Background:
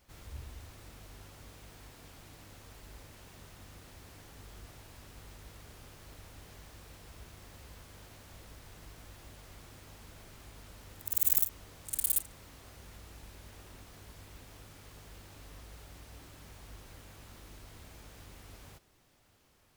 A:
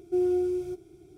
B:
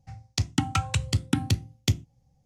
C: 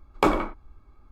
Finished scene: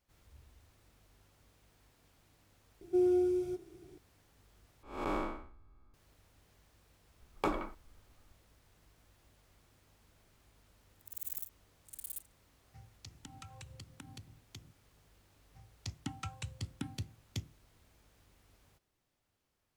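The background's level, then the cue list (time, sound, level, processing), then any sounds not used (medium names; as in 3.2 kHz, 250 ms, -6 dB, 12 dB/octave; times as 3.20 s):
background -14.5 dB
2.81 s: add A -3 dB
4.83 s: replace with C -7.5 dB + spectral blur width 232 ms
7.21 s: add C -12.5 dB
12.67 s: add B -13.5 dB + compression, threshold -34 dBFS
15.48 s: add B -16.5 dB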